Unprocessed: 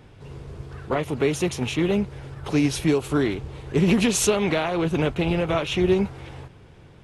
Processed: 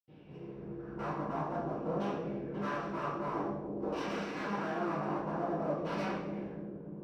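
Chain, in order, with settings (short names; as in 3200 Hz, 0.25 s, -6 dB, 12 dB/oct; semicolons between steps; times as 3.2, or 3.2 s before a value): bell 1200 Hz -12 dB 1.2 oct; wavefolder -27 dBFS; LFO low-pass saw down 0.52 Hz 520–3100 Hz; one-sided clip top -41.5 dBFS; analogue delay 0.299 s, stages 1024, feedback 68%, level -4 dB; reverb, pre-delay 76 ms; gain -1.5 dB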